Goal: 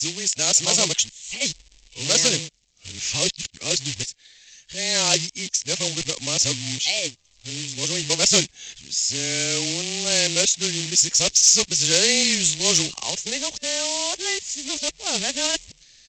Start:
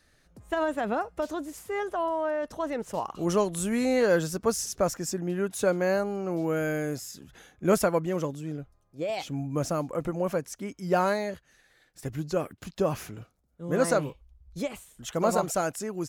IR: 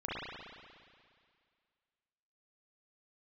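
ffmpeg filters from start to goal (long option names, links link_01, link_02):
-af "areverse,lowshelf=frequency=210:gain=5,afreqshift=-18,aresample=16000,acrusher=bits=3:mode=log:mix=0:aa=0.000001,aresample=44100,aexciter=amount=9.4:drive=7:freq=2100,volume=-4dB"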